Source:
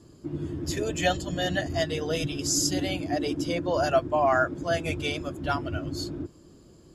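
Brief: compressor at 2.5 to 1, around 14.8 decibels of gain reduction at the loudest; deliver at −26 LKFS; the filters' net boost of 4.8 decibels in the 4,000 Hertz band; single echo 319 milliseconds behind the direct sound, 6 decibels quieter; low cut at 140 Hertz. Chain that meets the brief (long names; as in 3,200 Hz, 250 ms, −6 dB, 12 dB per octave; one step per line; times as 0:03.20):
high-pass filter 140 Hz
parametric band 4,000 Hz +6.5 dB
downward compressor 2.5 to 1, threshold −41 dBFS
single-tap delay 319 ms −6 dB
level +11.5 dB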